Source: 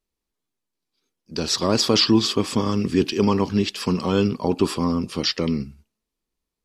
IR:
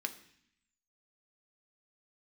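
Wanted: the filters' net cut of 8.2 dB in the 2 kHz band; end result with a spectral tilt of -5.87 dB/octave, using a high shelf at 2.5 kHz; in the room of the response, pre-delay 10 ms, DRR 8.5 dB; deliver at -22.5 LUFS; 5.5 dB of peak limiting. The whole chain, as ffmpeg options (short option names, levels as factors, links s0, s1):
-filter_complex "[0:a]equalizer=f=2000:t=o:g=-8,highshelf=f=2500:g=-6,alimiter=limit=0.266:level=0:latency=1,asplit=2[s0][s1];[1:a]atrim=start_sample=2205,adelay=10[s2];[s1][s2]afir=irnorm=-1:irlink=0,volume=0.335[s3];[s0][s3]amix=inputs=2:normalize=0,volume=1.12"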